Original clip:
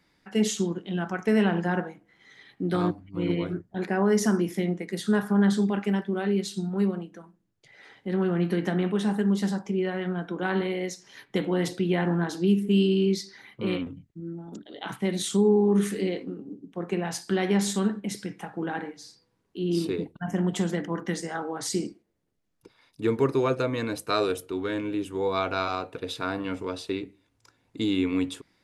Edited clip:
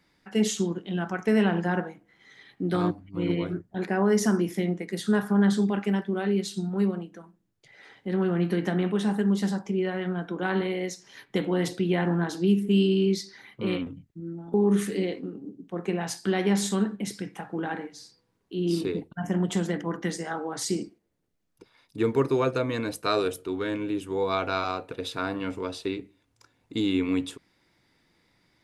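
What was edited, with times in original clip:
0:14.54–0:15.58: remove

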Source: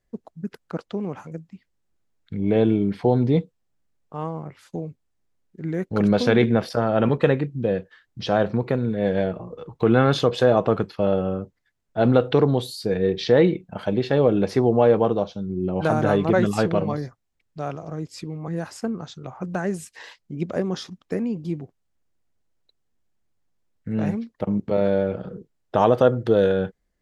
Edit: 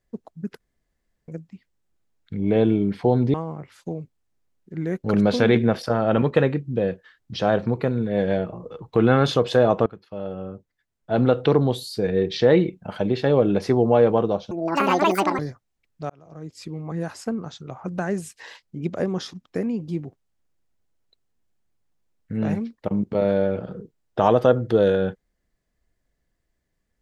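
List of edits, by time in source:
0:00.60–0:01.28: fill with room tone
0:03.34–0:04.21: remove
0:10.73–0:12.40: fade in, from −20 dB
0:15.38–0:16.95: play speed 179%
0:17.66–0:18.33: fade in

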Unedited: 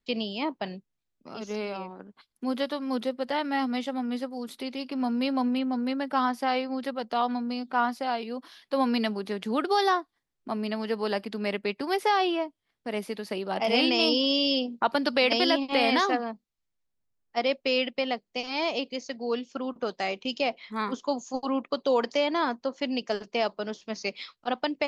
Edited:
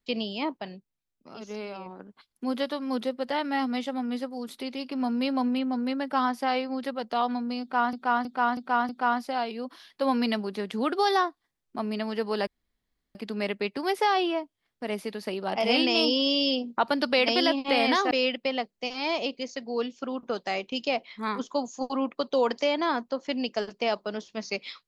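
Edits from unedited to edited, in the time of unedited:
0:00.57–0:01.86: clip gain −4 dB
0:07.61–0:07.93: repeat, 5 plays
0:11.19: splice in room tone 0.68 s
0:16.15–0:17.64: remove

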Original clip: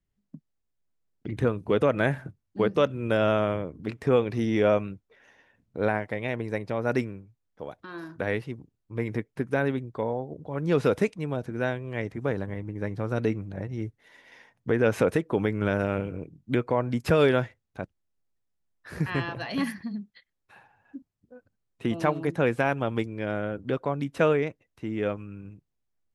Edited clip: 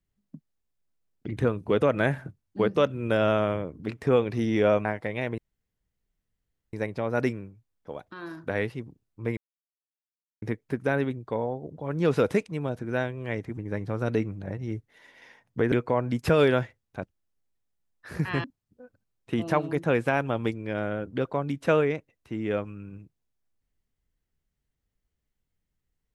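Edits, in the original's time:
0:04.85–0:05.92: remove
0:06.45: splice in room tone 1.35 s
0:09.09: splice in silence 1.05 s
0:12.24–0:12.67: remove
0:14.82–0:16.53: remove
0:19.25–0:20.96: remove

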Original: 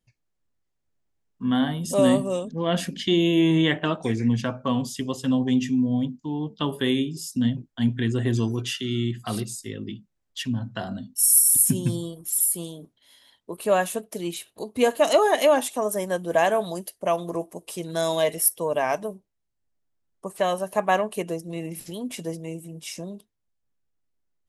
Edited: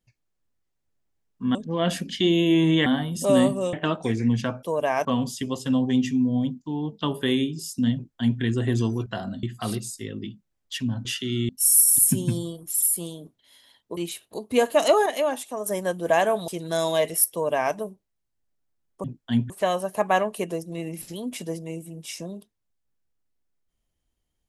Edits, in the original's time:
0:01.55–0:02.42: move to 0:03.73
0:07.53–0:07.99: duplicate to 0:20.28
0:08.64–0:09.08: swap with 0:10.70–0:11.07
0:13.55–0:14.22: remove
0:15.31–0:15.91: clip gain −6 dB
0:16.73–0:17.72: remove
0:18.56–0:18.98: duplicate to 0:04.63

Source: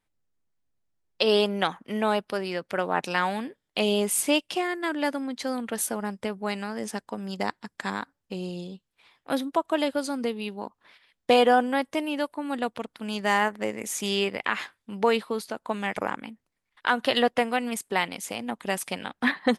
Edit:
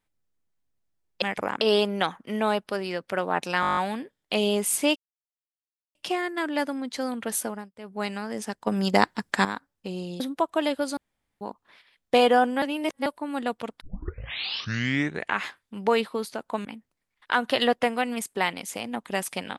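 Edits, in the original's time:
0:03.22: stutter 0.02 s, 9 plays
0:04.41: splice in silence 0.99 s
0:05.91–0:06.48: duck −22.5 dB, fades 0.26 s
0:07.13–0:07.91: clip gain +9 dB
0:08.66–0:09.36: remove
0:10.13–0:10.57: fill with room tone
0:11.78–0:12.22: reverse
0:12.97: tape start 1.65 s
0:15.81–0:16.20: move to 0:01.22

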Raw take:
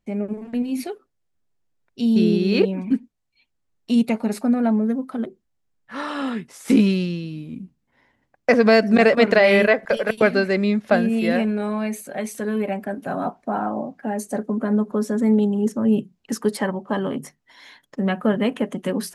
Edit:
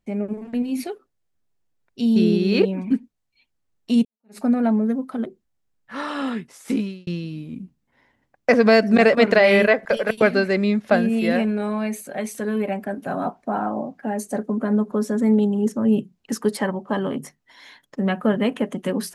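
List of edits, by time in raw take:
0:04.05–0:04.39: fade in exponential
0:06.34–0:07.07: fade out

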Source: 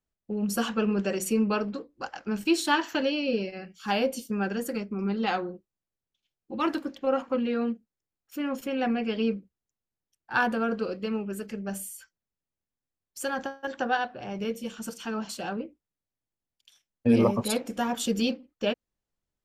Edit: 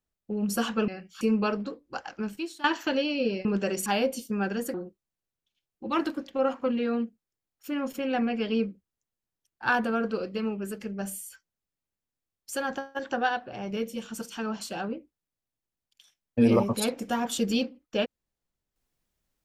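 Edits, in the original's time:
0:00.88–0:01.29: swap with 0:03.53–0:03.86
0:02.25–0:02.72: fade out quadratic, to −18 dB
0:04.74–0:05.42: remove

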